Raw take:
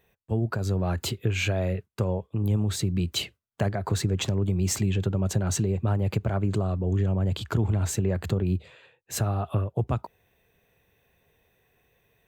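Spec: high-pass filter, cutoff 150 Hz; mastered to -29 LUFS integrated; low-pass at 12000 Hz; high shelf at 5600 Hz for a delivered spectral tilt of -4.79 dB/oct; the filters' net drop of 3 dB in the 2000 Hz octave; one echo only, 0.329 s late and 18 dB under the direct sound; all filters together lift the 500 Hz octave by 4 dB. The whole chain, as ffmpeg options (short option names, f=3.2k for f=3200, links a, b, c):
-af "highpass=150,lowpass=12k,equalizer=f=500:t=o:g=5.5,equalizer=f=2k:t=o:g=-5.5,highshelf=f=5.6k:g=6.5,aecho=1:1:329:0.126,volume=-0.5dB"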